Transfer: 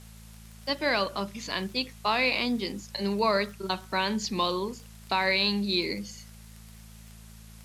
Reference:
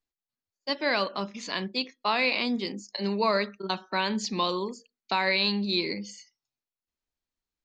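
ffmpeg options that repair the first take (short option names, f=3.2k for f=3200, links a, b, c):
-af "adeclick=t=4,bandreject=f=54.8:t=h:w=4,bandreject=f=109.6:t=h:w=4,bandreject=f=164.4:t=h:w=4,bandreject=f=219.2:t=h:w=4,afwtdn=0.002"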